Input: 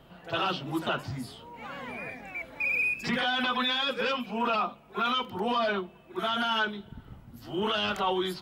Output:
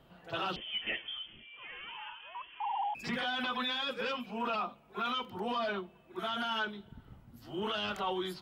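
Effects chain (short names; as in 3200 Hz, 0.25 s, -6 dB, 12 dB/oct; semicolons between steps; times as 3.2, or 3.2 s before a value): 0.56–2.95 inverted band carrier 3300 Hz; gain -6.5 dB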